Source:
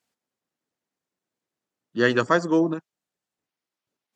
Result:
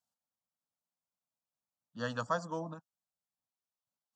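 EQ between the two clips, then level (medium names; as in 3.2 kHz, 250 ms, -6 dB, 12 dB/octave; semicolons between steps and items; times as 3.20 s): static phaser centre 890 Hz, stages 4; -9.0 dB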